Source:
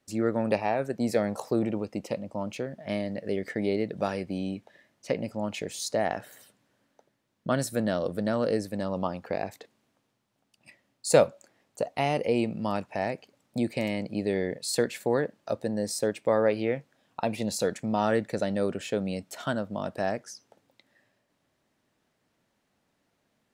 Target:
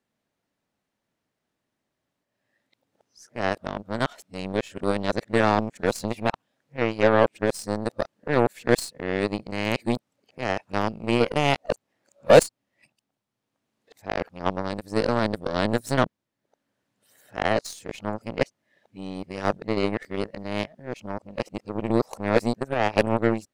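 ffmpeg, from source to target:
-af "areverse,acontrast=72,aeval=exprs='0.708*(cos(1*acos(clip(val(0)/0.708,-1,1)))-cos(1*PI/2))+0.0447*(cos(3*acos(clip(val(0)/0.708,-1,1)))-cos(3*PI/2))+0.0282*(cos(6*acos(clip(val(0)/0.708,-1,1)))-cos(6*PI/2))+0.0631*(cos(7*acos(clip(val(0)/0.708,-1,1)))-cos(7*PI/2))+0.00501*(cos(8*acos(clip(val(0)/0.708,-1,1)))-cos(8*PI/2))':c=same,volume=1.12"

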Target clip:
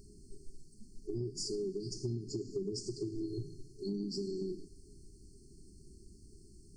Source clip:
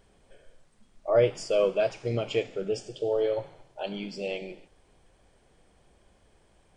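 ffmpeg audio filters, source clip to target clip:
-filter_complex "[0:a]asplit=2[s0][s1];[s1]alimiter=limit=0.0841:level=0:latency=1:release=75,volume=0.891[s2];[s0][s2]amix=inputs=2:normalize=0,afftfilt=real='re*(1-between(b*sr/4096,420,4200))':imag='im*(1-between(b*sr/4096,420,4200))':win_size=4096:overlap=0.75,acompressor=threshold=0.0158:ratio=10,volume=1.26"

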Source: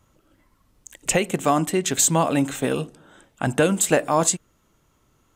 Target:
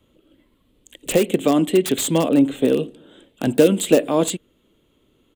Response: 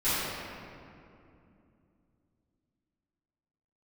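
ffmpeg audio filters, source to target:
-filter_complex "[0:a]firequalizer=gain_entry='entry(150,0);entry(240,9);entry(480,9);entry(760,-3);entry(1400,-4);entry(3300,11);entry(5400,-11);entry(7700,-3);entry(14000,-1)':delay=0.05:min_phase=1,acrossover=split=170|1200|5900[s0][s1][s2][s3];[s2]aeval=exprs='(mod(9.44*val(0)+1,2)-1)/9.44':c=same[s4];[s0][s1][s4][s3]amix=inputs=4:normalize=0,asettb=1/sr,asplit=3[s5][s6][s7];[s5]atrim=end=2.294[s8];[s6]atrim=start=2.29:end=2.83,asetpts=PTS-STARTPTS,afade=t=in:d=0.004:c=qsin,afade=t=out:st=0.536:d=0.004:c=qsin,adynamicequalizer=threshold=0.0178:dfrequency=1700:dqfactor=0.7:tfrequency=1700:tqfactor=0.7:attack=5:release=100:ratio=0.375:range=3.5:mode=cutabove:tftype=highshelf[s9];[s7]atrim=start=2.826[s10];[s8][s9]acrossfade=d=0.004:c1=hsin:c2=qsin[s11];[s11][s10]acrossfade=d=0.004:c1=qsin:c2=hsin,volume=0.794"

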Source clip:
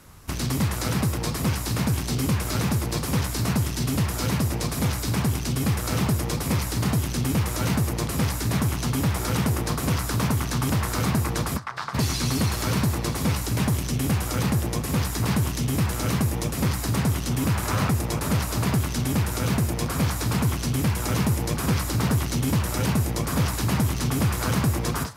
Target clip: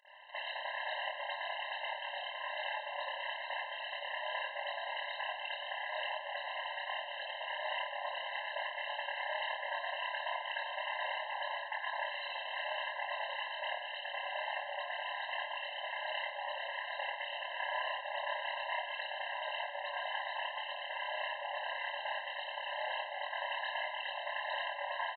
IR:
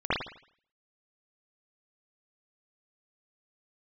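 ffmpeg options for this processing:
-filter_complex "[0:a]tiltshelf=f=1200:g=-5,acompressor=threshold=0.0501:ratio=6,aresample=8000,asoftclip=type=tanh:threshold=0.0398,aresample=44100,tremolo=f=33:d=0.919[s0];[1:a]atrim=start_sample=2205,asetrate=48510,aresample=44100[s1];[s0][s1]afir=irnorm=-1:irlink=0,afftfilt=real='re*eq(mod(floor(b*sr/1024/530),2),1)':imag='im*eq(mod(floor(b*sr/1024/530),2),1)':win_size=1024:overlap=0.75,volume=0.596"

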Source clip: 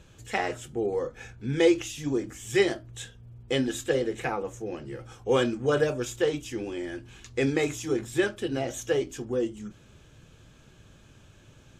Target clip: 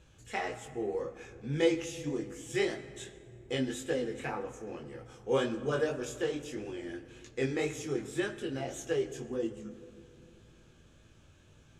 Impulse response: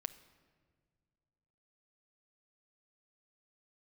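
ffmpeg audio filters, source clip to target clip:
-filter_complex "[0:a]flanger=delay=18:depth=5.4:speed=1.8[s0];[1:a]atrim=start_sample=2205,asetrate=22932,aresample=44100[s1];[s0][s1]afir=irnorm=-1:irlink=0,volume=0.596"

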